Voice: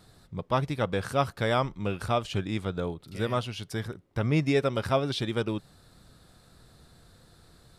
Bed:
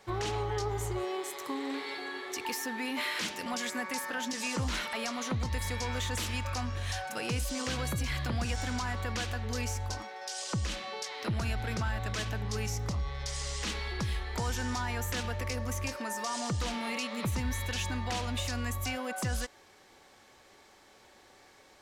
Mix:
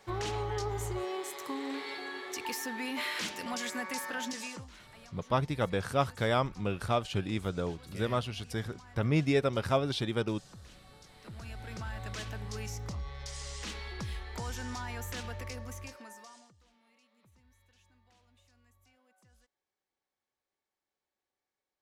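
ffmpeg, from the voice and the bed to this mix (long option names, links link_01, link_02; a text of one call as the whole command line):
ffmpeg -i stem1.wav -i stem2.wav -filter_complex "[0:a]adelay=4800,volume=-2.5dB[link_01];[1:a]volume=13dB,afade=type=out:start_time=4.26:duration=0.41:silence=0.11885,afade=type=in:start_time=11.13:duration=0.97:silence=0.188365,afade=type=out:start_time=15.35:duration=1.18:silence=0.0398107[link_02];[link_01][link_02]amix=inputs=2:normalize=0" out.wav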